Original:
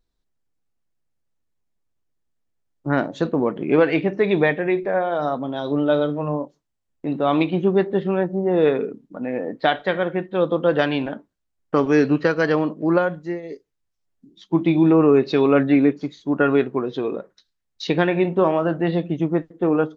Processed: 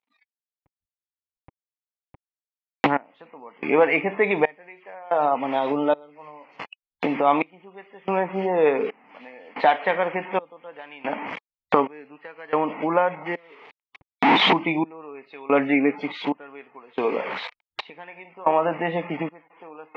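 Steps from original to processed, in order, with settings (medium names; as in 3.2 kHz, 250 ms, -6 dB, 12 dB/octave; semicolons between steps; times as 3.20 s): one-bit delta coder 64 kbps, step -31 dBFS; recorder AGC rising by 19 dB/s; spectral noise reduction 26 dB; trance gate "....xxxxx" 91 bpm -24 dB; cabinet simulation 350–2700 Hz, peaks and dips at 350 Hz -10 dB, 580 Hz -4 dB, 890 Hz +6 dB, 1.5 kHz -8 dB, 2.2 kHz +6 dB; tape noise reduction on one side only encoder only; trim +3 dB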